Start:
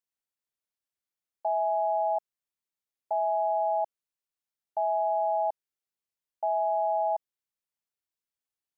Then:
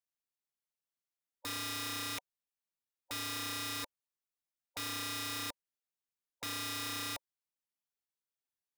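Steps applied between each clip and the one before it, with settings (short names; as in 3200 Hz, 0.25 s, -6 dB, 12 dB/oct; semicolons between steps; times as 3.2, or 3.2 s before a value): spectral gate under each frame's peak -15 dB strong; wrapped overs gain 28 dB; gain -5.5 dB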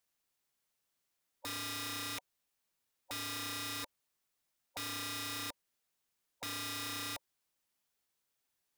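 limiter -45.5 dBFS, peak gain reduction 12 dB; gain +10.5 dB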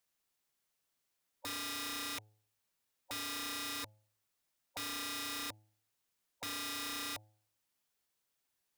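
de-hum 106.5 Hz, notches 8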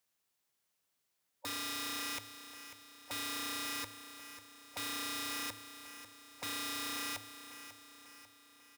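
HPF 55 Hz; feedback echo 0.544 s, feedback 53%, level -12 dB; gain +1 dB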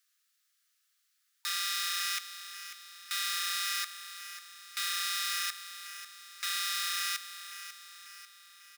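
rippled Chebyshev high-pass 1200 Hz, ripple 3 dB; gain +8.5 dB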